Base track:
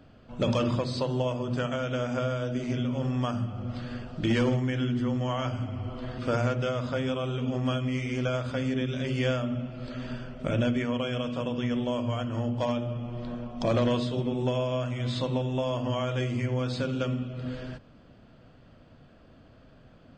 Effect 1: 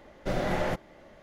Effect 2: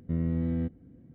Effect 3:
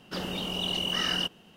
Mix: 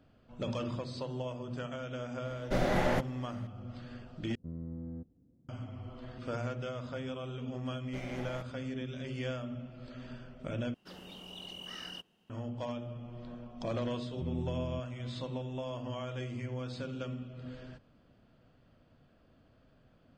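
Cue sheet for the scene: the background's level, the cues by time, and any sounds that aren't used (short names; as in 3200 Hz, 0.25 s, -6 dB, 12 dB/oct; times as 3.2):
base track -10 dB
2.25 add 1 -0.5 dB
4.35 replace with 2 -13 dB + LPF 1200 Hz 24 dB/oct
7.67 add 1 -15.5 dB
10.74 replace with 3 -16 dB
14.12 add 2 -17 dB + tilt -3 dB/oct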